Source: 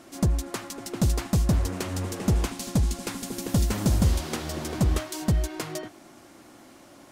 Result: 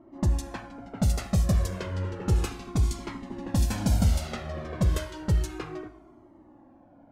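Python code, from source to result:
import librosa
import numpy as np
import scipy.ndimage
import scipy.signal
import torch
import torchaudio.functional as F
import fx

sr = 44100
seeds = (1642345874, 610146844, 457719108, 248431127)

y = fx.env_lowpass(x, sr, base_hz=650.0, full_db=-19.5)
y = fx.rev_double_slope(y, sr, seeds[0], early_s=0.65, late_s=2.5, knee_db=-22, drr_db=10.5)
y = fx.comb_cascade(y, sr, direction='falling', hz=0.32)
y = y * 10.0 ** (2.0 / 20.0)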